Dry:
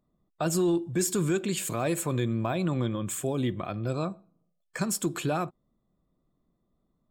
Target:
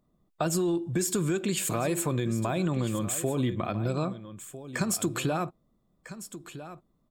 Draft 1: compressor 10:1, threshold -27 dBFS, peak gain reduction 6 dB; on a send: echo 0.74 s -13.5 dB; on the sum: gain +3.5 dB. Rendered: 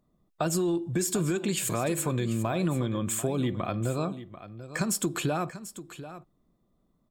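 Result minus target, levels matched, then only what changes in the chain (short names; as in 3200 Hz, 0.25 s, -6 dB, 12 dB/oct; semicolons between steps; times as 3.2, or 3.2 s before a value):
echo 0.561 s early
change: echo 1.301 s -13.5 dB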